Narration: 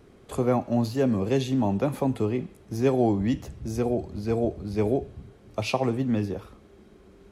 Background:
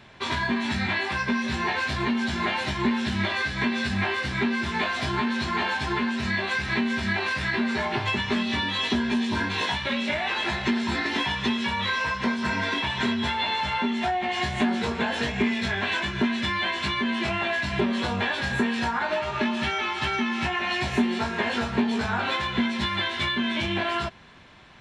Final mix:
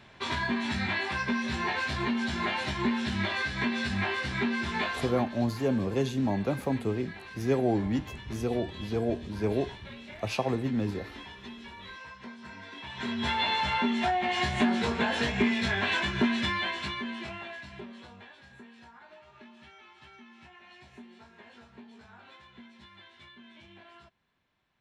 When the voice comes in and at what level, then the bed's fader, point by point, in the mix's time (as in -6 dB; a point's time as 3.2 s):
4.65 s, -4.0 dB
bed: 4.85 s -4 dB
5.5 s -19 dB
12.71 s -19 dB
13.32 s -1.5 dB
16.39 s -1.5 dB
18.42 s -26.5 dB